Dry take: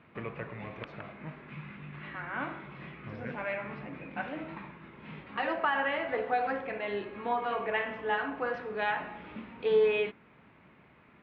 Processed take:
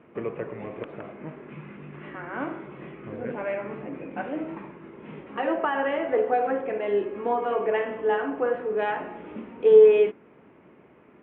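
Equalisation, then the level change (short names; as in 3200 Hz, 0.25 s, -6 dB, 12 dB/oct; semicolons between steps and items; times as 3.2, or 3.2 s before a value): Chebyshev low-pass 3200 Hz, order 4; bell 390 Hz +14.5 dB 1.8 oct; -2.0 dB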